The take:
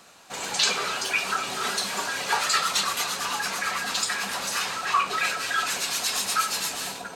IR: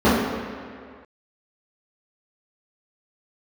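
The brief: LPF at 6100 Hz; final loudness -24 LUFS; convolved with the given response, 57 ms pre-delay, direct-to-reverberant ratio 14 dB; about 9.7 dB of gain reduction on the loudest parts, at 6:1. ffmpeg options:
-filter_complex "[0:a]lowpass=6.1k,acompressor=threshold=-29dB:ratio=6,asplit=2[a][b];[1:a]atrim=start_sample=2205,adelay=57[c];[b][c]afir=irnorm=-1:irlink=0,volume=-39dB[d];[a][d]amix=inputs=2:normalize=0,volume=7dB"

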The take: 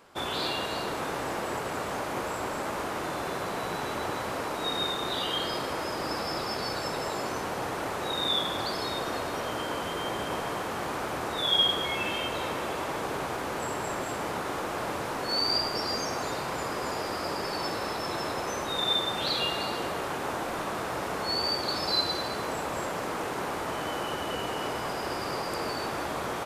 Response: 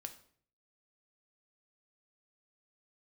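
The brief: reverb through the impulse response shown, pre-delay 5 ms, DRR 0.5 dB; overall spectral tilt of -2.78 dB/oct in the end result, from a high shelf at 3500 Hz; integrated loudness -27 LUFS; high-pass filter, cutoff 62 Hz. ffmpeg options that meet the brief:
-filter_complex "[0:a]highpass=62,highshelf=f=3.5k:g=9,asplit=2[a][b];[1:a]atrim=start_sample=2205,adelay=5[c];[b][c]afir=irnorm=-1:irlink=0,volume=3.5dB[d];[a][d]amix=inputs=2:normalize=0,volume=-2.5dB"

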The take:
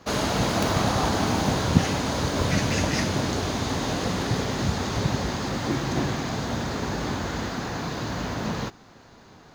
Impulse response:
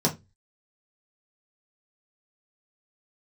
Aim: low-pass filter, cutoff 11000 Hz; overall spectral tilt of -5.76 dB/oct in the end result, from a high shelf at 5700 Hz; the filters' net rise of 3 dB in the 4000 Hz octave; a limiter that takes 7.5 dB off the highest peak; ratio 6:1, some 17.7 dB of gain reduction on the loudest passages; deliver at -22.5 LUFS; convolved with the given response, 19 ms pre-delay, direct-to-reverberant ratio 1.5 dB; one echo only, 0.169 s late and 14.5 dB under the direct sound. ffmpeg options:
-filter_complex "[0:a]lowpass=11k,equalizer=f=4k:t=o:g=6.5,highshelf=f=5.7k:g=-7.5,acompressor=threshold=-33dB:ratio=6,alimiter=level_in=4dB:limit=-24dB:level=0:latency=1,volume=-4dB,aecho=1:1:169:0.188,asplit=2[a][b];[1:a]atrim=start_sample=2205,adelay=19[c];[b][c]afir=irnorm=-1:irlink=0,volume=-13dB[d];[a][d]amix=inputs=2:normalize=0,volume=8.5dB"

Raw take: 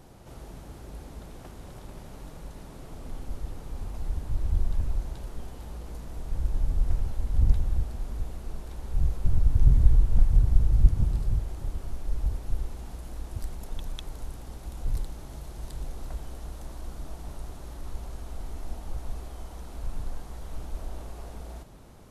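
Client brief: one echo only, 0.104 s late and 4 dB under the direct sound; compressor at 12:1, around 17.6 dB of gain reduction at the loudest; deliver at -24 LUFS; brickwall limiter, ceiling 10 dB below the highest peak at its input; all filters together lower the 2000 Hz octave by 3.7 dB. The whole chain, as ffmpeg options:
-af "equalizer=f=2k:t=o:g=-5,acompressor=threshold=-28dB:ratio=12,alimiter=level_in=7.5dB:limit=-24dB:level=0:latency=1,volume=-7.5dB,aecho=1:1:104:0.631,volume=18dB"

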